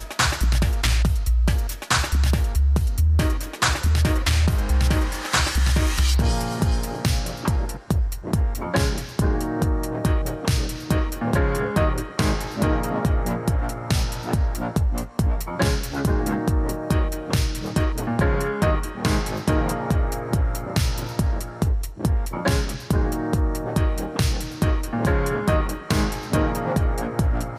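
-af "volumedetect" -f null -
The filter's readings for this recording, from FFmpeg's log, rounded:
mean_volume: -21.4 dB
max_volume: -9.1 dB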